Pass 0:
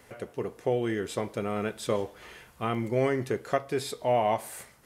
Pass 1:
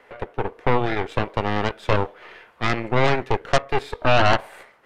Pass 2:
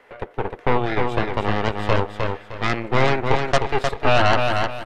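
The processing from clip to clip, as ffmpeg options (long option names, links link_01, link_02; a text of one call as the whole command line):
ffmpeg -i in.wav -filter_complex "[0:a]acrossover=split=320 3200:gain=0.126 1 0.0794[link_01][link_02][link_03];[link_01][link_02][link_03]amix=inputs=3:normalize=0,aeval=exprs='0.224*(cos(1*acos(clip(val(0)/0.224,-1,1)))-cos(1*PI/2))+0.0708*(cos(8*acos(clip(val(0)/0.224,-1,1)))-cos(8*PI/2))':channel_layout=same,volume=6dB" out.wav
ffmpeg -i in.wav -af "aecho=1:1:307|614|921|1228:0.596|0.173|0.0501|0.0145" out.wav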